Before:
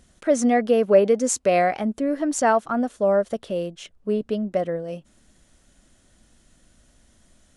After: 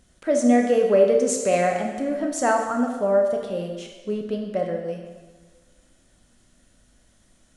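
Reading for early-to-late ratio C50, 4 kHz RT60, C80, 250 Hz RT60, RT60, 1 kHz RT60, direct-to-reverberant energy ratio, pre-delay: 4.5 dB, 1.3 s, 6.5 dB, 1.4 s, 1.4 s, 1.4 s, 2.0 dB, 6 ms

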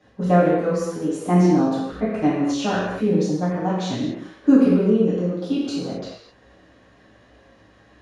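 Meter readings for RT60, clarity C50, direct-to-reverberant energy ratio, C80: not exponential, -0.5 dB, -12.0 dB, 2.0 dB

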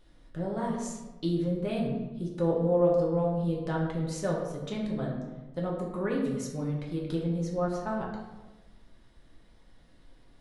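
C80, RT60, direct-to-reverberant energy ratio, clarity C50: 5.5 dB, 1.2 s, -3.0 dB, 3.0 dB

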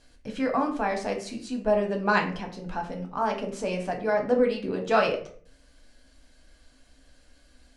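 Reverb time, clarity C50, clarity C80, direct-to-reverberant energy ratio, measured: 0.50 s, 9.5 dB, 14.0 dB, 1.5 dB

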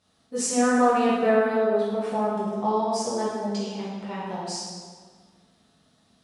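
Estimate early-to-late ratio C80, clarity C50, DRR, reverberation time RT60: 1.5 dB, -1.0 dB, -9.5 dB, 1.7 s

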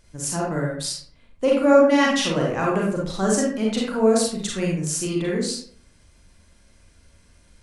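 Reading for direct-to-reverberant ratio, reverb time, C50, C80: -3.0 dB, 0.55 s, 1.5 dB, 6.5 dB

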